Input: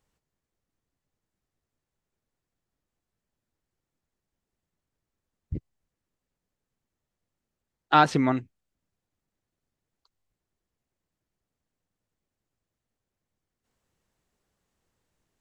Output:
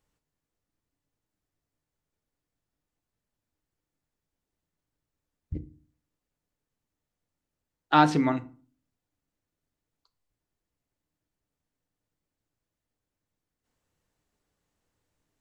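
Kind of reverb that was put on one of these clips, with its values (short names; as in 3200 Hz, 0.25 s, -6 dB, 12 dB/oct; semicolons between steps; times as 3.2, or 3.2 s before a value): FDN reverb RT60 0.39 s, low-frequency decay 1.45×, high-frequency decay 0.7×, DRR 9.5 dB; gain -2 dB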